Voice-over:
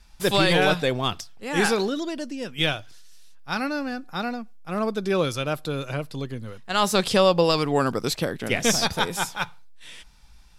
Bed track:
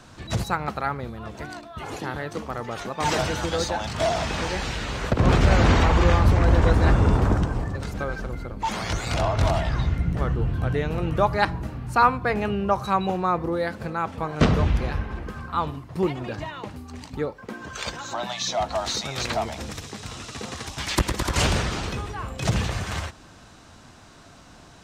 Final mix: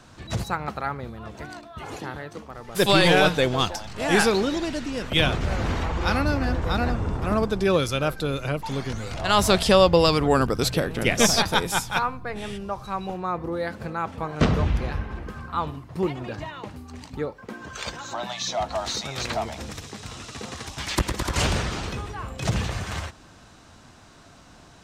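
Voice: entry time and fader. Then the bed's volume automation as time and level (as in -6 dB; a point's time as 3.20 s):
2.55 s, +2.0 dB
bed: 1.98 s -2 dB
2.53 s -8.5 dB
12.79 s -8.5 dB
13.74 s -1.5 dB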